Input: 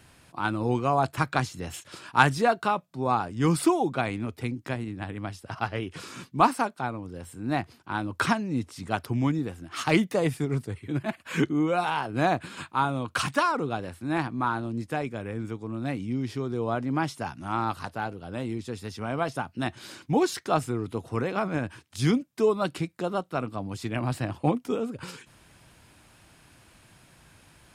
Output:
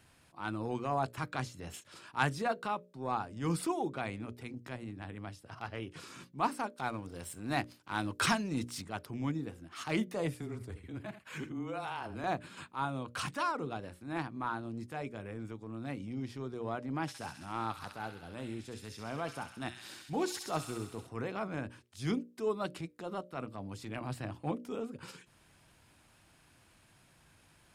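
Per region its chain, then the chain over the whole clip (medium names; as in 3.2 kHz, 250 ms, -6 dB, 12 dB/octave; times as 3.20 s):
6.78–8.82 s: treble shelf 2 kHz +9 dB + waveshaping leveller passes 1
10.34–12.24 s: compression, threshold -26 dBFS + frequency shift -16 Hz + delay 82 ms -13.5 dB
17.01–21.07 s: treble shelf 7.2 kHz +4 dB + feedback echo behind a high-pass 66 ms, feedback 74%, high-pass 2.1 kHz, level -4.5 dB
whole clip: hum notches 60/120/180/240/300/360/420/480/540/600 Hz; transient shaper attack -7 dB, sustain -2 dB; trim -7.5 dB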